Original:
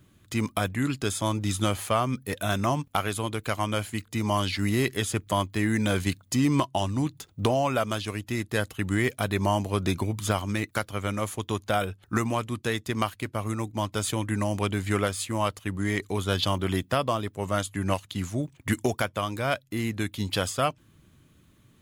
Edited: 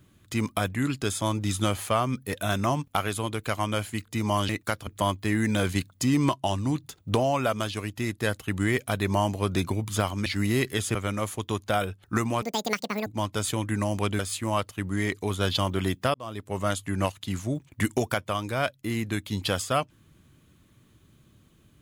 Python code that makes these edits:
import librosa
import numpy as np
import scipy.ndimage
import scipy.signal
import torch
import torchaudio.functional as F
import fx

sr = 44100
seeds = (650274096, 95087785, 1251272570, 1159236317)

y = fx.edit(x, sr, fx.swap(start_s=4.49, length_s=0.69, other_s=10.57, other_length_s=0.38),
    fx.speed_span(start_s=12.42, length_s=1.24, speed=1.93),
    fx.cut(start_s=14.79, length_s=0.28),
    fx.fade_in_span(start_s=17.02, length_s=0.37), tone=tone)